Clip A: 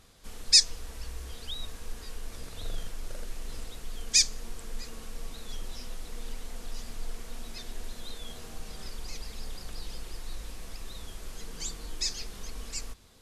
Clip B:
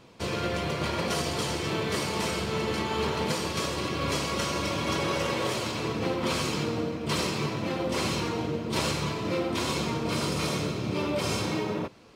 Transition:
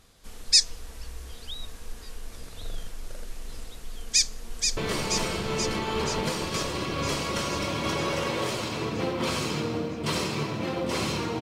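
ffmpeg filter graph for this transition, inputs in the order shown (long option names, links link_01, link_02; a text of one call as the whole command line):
ffmpeg -i cue0.wav -i cue1.wav -filter_complex "[0:a]apad=whole_dur=11.41,atrim=end=11.41,atrim=end=4.772[link_01];[1:a]atrim=start=1.798:end=8.44[link_02];[link_01][link_02]acrossfade=duration=0.004:curve1=hsin:curve2=hsin,asplit=2[link_03][link_04];[link_04]afade=type=in:start_time=4.02:duration=0.01,afade=type=out:start_time=4.77:duration=0.01,aecho=0:1:480|960|1440|1920|2400|2880|3360|3840|4320|4800|5280|5760:0.595662|0.416964|0.291874|0.204312|0.143018|0.100113|0.0700791|0.0490553|0.0343387|0.0240371|0.016826|0.0117782[link_05];[link_03][link_05]amix=inputs=2:normalize=0" out.wav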